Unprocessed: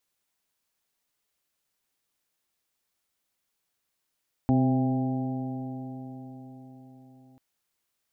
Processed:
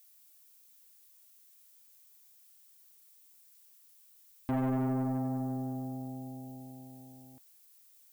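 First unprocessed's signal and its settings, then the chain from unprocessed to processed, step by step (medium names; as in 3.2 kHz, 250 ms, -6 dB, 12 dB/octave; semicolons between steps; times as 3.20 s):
stretched partials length 2.89 s, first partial 129 Hz, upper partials 3/-13/-14/-11/-8 dB, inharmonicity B 0.0017, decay 4.97 s, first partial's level -23 dB
saturation -27.5 dBFS; added noise violet -61 dBFS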